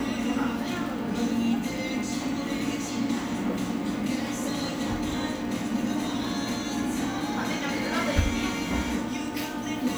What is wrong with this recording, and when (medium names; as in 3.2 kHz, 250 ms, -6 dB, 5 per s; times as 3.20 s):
crackle 18 per s